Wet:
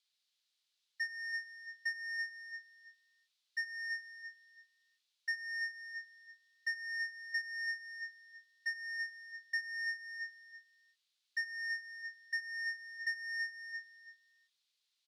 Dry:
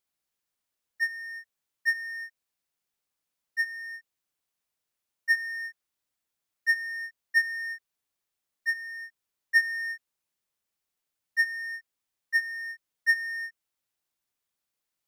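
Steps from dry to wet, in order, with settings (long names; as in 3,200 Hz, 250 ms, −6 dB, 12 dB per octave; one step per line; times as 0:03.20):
on a send: repeating echo 329 ms, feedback 24%, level −12 dB
on the sum: downward compressor, threshold −34 dBFS, peak gain reduction 16 dB
resonant band-pass 3,900 Hz, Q 2.7
level +12 dB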